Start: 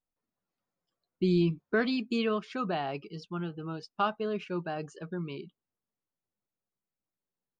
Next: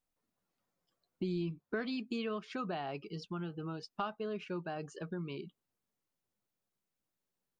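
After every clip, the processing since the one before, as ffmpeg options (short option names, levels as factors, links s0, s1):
-af "acompressor=threshold=0.00708:ratio=2.5,volume=1.41"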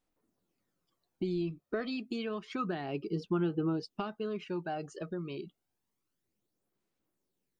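-af "equalizer=f=340:w=1.7:g=7.5,aphaser=in_gain=1:out_gain=1:delay=1.6:decay=0.48:speed=0.29:type=sinusoidal"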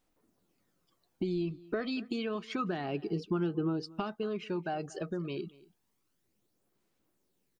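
-af "acompressor=threshold=0.00562:ratio=1.5,aecho=1:1:233:0.0841,volume=2"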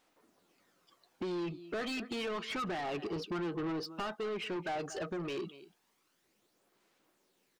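-filter_complex "[0:a]asplit=2[s0][s1];[s1]highpass=f=720:p=1,volume=20,asoftclip=type=tanh:threshold=0.1[s2];[s0][s2]amix=inputs=2:normalize=0,lowpass=f=4200:p=1,volume=0.501,volume=0.355"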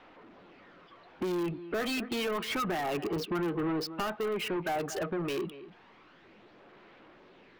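-filter_complex "[0:a]aeval=exprs='val(0)+0.5*0.00211*sgn(val(0))':c=same,acrossover=split=330|450|3200[s0][s1][s2][s3];[s3]acrusher=bits=7:mix=0:aa=0.000001[s4];[s0][s1][s2][s4]amix=inputs=4:normalize=0,volume=1.68"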